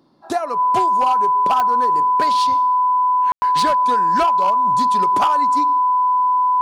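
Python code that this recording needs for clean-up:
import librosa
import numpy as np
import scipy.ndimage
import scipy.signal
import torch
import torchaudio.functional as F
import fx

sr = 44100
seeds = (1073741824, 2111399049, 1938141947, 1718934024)

y = fx.fix_declip(x, sr, threshold_db=-11.0)
y = fx.fix_declick_ar(y, sr, threshold=10.0)
y = fx.notch(y, sr, hz=1000.0, q=30.0)
y = fx.fix_ambience(y, sr, seeds[0], print_start_s=0.0, print_end_s=0.5, start_s=3.32, end_s=3.42)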